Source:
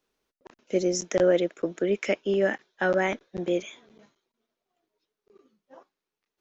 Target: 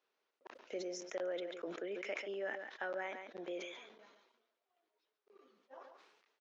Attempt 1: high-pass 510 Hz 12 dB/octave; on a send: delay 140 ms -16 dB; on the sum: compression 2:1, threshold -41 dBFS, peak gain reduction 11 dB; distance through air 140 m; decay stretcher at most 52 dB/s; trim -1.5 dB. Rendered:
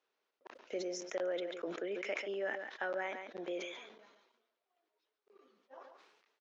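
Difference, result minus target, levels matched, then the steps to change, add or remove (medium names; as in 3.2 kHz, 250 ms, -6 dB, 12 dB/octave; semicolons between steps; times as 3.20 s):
compression: peak gain reduction -3 dB
change: compression 2:1, threshold -47 dBFS, peak gain reduction 14 dB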